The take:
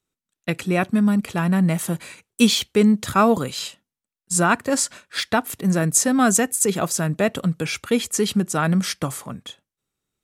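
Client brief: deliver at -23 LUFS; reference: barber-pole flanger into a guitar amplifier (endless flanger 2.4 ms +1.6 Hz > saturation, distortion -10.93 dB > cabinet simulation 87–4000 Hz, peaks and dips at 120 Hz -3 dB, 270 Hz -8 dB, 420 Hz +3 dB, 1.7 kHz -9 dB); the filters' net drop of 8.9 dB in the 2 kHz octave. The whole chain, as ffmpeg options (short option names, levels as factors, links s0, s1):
-filter_complex "[0:a]equalizer=f=2000:t=o:g=-7.5,asplit=2[s0][s1];[s1]adelay=2.4,afreqshift=1.6[s2];[s0][s2]amix=inputs=2:normalize=1,asoftclip=threshold=0.1,highpass=87,equalizer=f=120:t=q:w=4:g=-3,equalizer=f=270:t=q:w=4:g=-8,equalizer=f=420:t=q:w=4:g=3,equalizer=f=1700:t=q:w=4:g=-9,lowpass=f=4000:w=0.5412,lowpass=f=4000:w=1.3066,volume=2.37"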